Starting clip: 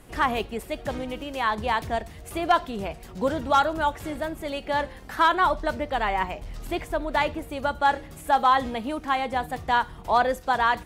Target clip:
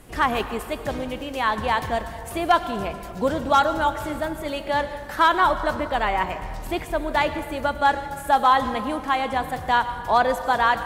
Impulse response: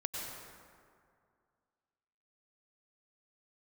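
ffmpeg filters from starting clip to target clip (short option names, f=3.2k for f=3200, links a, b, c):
-filter_complex "[0:a]asplit=2[a][b];[1:a]atrim=start_sample=2205,highshelf=f=7.6k:g=7.5[c];[b][c]afir=irnorm=-1:irlink=0,volume=-9dB[d];[a][d]amix=inputs=2:normalize=0"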